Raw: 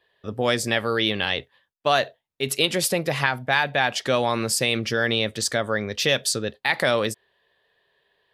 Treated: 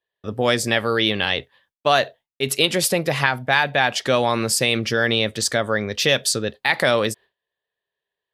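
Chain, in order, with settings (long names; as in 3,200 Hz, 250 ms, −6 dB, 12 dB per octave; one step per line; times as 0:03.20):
noise gate with hold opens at −53 dBFS
level +3 dB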